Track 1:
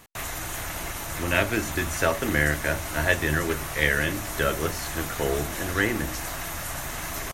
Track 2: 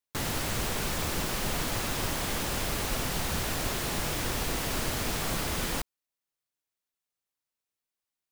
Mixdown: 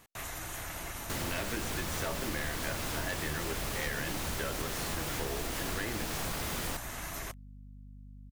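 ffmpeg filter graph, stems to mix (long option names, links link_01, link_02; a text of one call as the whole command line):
ffmpeg -i stem1.wav -i stem2.wav -filter_complex "[0:a]aeval=exprs='0.501*sin(PI/2*2.24*val(0)/0.501)':channel_layout=same,volume=-18.5dB[link_01];[1:a]aeval=exprs='val(0)+0.00562*(sin(2*PI*50*n/s)+sin(2*PI*2*50*n/s)/2+sin(2*PI*3*50*n/s)/3+sin(2*PI*4*50*n/s)/4+sin(2*PI*5*50*n/s)/5)':channel_layout=same,adelay=950,volume=-3dB[link_02];[link_01][link_02]amix=inputs=2:normalize=0,acompressor=threshold=-31dB:ratio=6" out.wav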